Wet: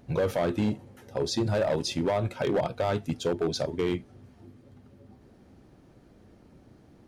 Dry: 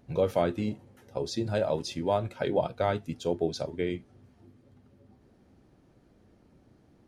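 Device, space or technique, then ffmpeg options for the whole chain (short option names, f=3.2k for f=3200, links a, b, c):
limiter into clipper: -af "alimiter=limit=-20dB:level=0:latency=1:release=80,asoftclip=type=hard:threshold=-26dB,volume=5.5dB"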